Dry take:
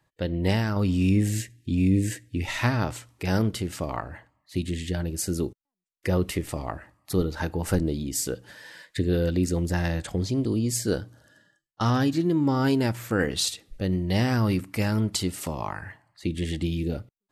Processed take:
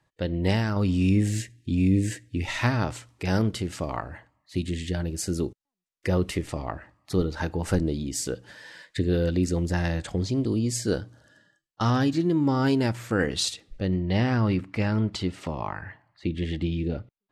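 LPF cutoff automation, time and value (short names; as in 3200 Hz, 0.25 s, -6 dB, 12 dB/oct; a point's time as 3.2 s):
6.4 s 8900 Hz
6.65 s 4800 Hz
7.36 s 8300 Hz
13.52 s 8300 Hz
14.04 s 3600 Hz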